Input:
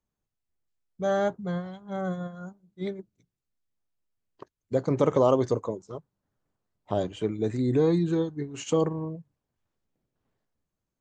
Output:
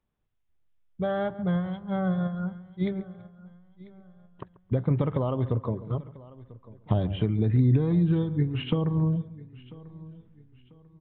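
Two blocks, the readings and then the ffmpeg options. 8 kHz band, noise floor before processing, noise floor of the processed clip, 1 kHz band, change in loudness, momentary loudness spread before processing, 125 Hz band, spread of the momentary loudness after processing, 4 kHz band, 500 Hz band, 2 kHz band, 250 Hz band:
n/a, under -85 dBFS, -66 dBFS, -4.0 dB, +0.5 dB, 16 LU, +8.0 dB, 22 LU, +1.0 dB, -6.0 dB, -0.5 dB, +2.0 dB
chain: -filter_complex "[0:a]asplit=2[a][b];[b]adelay=137,lowpass=f=2.1k:p=1,volume=-18.5dB,asplit=2[c][d];[d]adelay=137,lowpass=f=2.1k:p=1,volume=0.34,asplit=2[e][f];[f]adelay=137,lowpass=f=2.1k:p=1,volume=0.34[g];[c][e][g]amix=inputs=3:normalize=0[h];[a][h]amix=inputs=2:normalize=0,acompressor=threshold=-29dB:ratio=6,asplit=2[i][j];[j]aecho=0:1:993|1986|2979:0.0944|0.0312|0.0103[k];[i][k]amix=inputs=2:normalize=0,asubboost=boost=6:cutoff=160,aresample=8000,aresample=44100,volume=4.5dB"

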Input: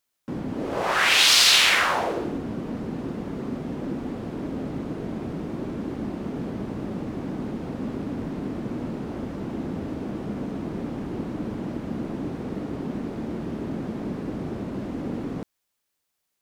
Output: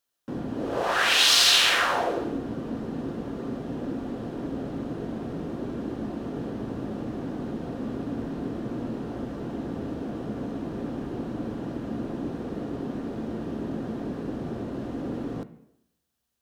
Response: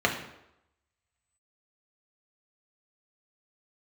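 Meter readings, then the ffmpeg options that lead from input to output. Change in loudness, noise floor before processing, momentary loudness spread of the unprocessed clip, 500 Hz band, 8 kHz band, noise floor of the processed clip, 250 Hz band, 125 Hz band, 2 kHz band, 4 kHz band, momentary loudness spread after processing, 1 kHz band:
-2.0 dB, -79 dBFS, 14 LU, -0.5 dB, -3.0 dB, -72 dBFS, -1.5 dB, -2.5 dB, -3.0 dB, -1.5 dB, 13 LU, -1.5 dB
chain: -filter_complex "[0:a]asplit=2[a][b];[1:a]atrim=start_sample=2205,lowpass=8.7k[c];[b][c]afir=irnorm=-1:irlink=0,volume=-20.5dB[d];[a][d]amix=inputs=2:normalize=0,volume=-3dB"

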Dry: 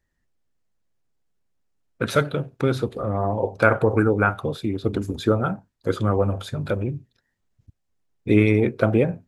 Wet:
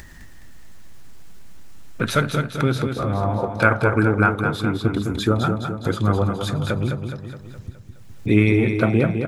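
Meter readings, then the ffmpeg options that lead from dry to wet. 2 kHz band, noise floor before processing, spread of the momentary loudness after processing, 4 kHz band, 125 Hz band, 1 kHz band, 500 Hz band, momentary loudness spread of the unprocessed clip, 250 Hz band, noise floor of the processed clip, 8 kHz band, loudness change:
+3.5 dB, -74 dBFS, 14 LU, +5.5 dB, +3.5 dB, +3.0 dB, -1.5 dB, 10 LU, +2.5 dB, -41 dBFS, +5.5 dB, +1.5 dB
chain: -filter_complex "[0:a]equalizer=f=500:w=1.5:g=-6.5,acompressor=mode=upward:threshold=-21dB:ratio=2.5,asplit=2[a][b];[b]aecho=0:1:209|418|627|836|1045|1254|1463:0.473|0.256|0.138|0.0745|0.0402|0.0217|0.0117[c];[a][c]amix=inputs=2:normalize=0,volume=2.5dB"

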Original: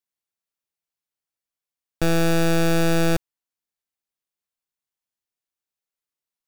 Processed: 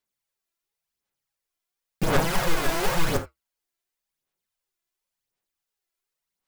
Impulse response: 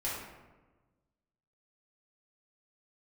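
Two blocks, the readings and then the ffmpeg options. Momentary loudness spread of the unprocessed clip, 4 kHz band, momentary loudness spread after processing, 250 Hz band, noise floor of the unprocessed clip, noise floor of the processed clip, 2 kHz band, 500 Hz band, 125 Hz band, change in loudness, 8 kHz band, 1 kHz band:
6 LU, -1.5 dB, 7 LU, -9.0 dB, under -85 dBFS, under -85 dBFS, -2.0 dB, -5.0 dB, -6.5 dB, -4.5 dB, -1.5 dB, +1.0 dB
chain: -filter_complex "[0:a]flanger=delay=2.9:depth=4.7:regen=-68:speed=2:shape=sinusoidal,aeval=exprs='(mod(33.5*val(0)+1,2)-1)/33.5':c=same,aphaser=in_gain=1:out_gain=1:delay=3:decay=0.54:speed=0.93:type=sinusoidal,asplit=2[a][b];[1:a]atrim=start_sample=2205,atrim=end_sample=3969[c];[b][c]afir=irnorm=-1:irlink=0,volume=-7.5dB[d];[a][d]amix=inputs=2:normalize=0,volume=4.5dB"

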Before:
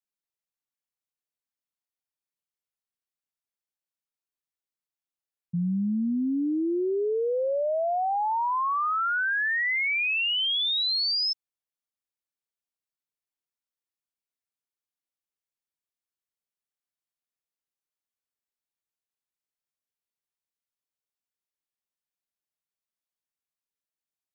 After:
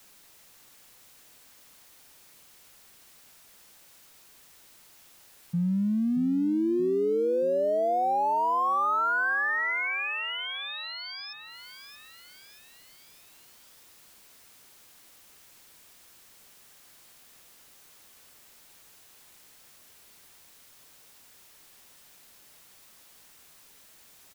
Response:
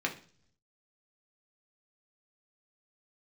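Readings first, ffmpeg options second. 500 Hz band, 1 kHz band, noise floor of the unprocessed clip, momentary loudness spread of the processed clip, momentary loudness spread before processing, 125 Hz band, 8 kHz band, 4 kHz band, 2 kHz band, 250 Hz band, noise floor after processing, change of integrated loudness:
+1.0 dB, +0.5 dB, under -85 dBFS, 14 LU, 4 LU, +1.0 dB, n/a, -11.5 dB, -2.0 dB, +1.0 dB, -56 dBFS, -2.0 dB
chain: -filter_complex "[0:a]aeval=exprs='val(0)+0.5*0.00473*sgn(val(0))':c=same,acrossover=split=2100[a][b];[b]acompressor=threshold=-43dB:ratio=10[c];[a][c]amix=inputs=2:normalize=0,aecho=1:1:628|1256|1884|2512|3140:0.282|0.135|0.0649|0.0312|0.015"

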